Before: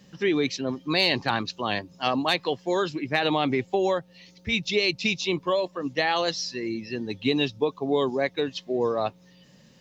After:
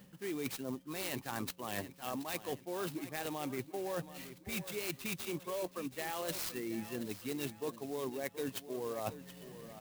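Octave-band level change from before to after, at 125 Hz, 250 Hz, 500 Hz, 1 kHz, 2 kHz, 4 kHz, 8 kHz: −11.5 dB, −13.0 dB, −14.5 dB, −15.0 dB, −16.0 dB, −18.0 dB, can't be measured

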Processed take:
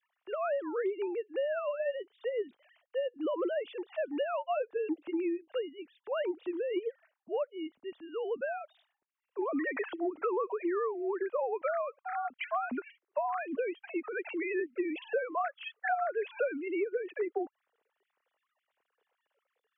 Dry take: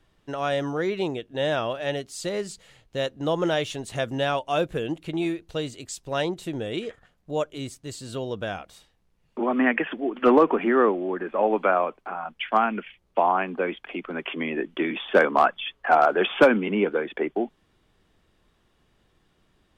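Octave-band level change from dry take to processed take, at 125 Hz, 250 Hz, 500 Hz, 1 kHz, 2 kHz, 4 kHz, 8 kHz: below −35 dB, −10.5 dB, −8.0 dB, −11.5 dB, −11.5 dB, −17.0 dB, below −35 dB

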